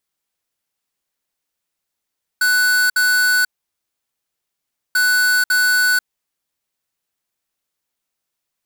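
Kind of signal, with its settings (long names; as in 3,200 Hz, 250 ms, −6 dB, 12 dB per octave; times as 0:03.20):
beeps in groups square 1,490 Hz, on 0.49 s, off 0.06 s, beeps 2, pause 1.50 s, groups 2, −15 dBFS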